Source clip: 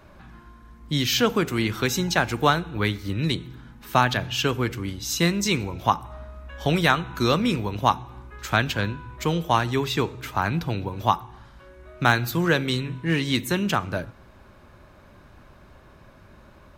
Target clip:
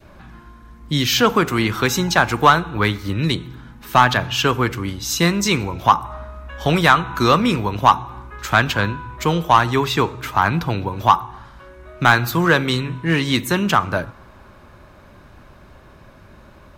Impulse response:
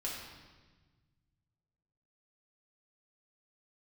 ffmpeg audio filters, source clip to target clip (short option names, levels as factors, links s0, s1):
-af "adynamicequalizer=threshold=0.0158:dfrequency=1100:dqfactor=1.3:tfrequency=1100:tqfactor=1.3:attack=5:release=100:ratio=0.375:range=4:mode=boostabove:tftype=bell,acontrast=45,volume=0.891"